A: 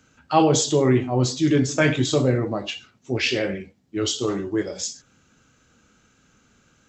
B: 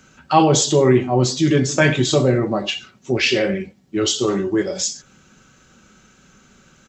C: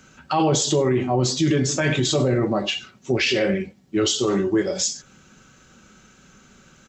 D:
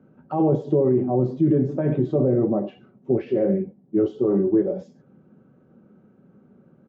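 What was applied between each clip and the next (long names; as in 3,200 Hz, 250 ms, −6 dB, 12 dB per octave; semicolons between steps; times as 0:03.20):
comb filter 5.3 ms, depth 40%; in parallel at −1 dB: downward compressor, threshold −29 dBFS, peak gain reduction 16 dB; on the sum: level +2 dB
brickwall limiter −11.5 dBFS, peak gain reduction 10 dB
flat-topped band-pass 280 Hz, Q 0.58; level +1.5 dB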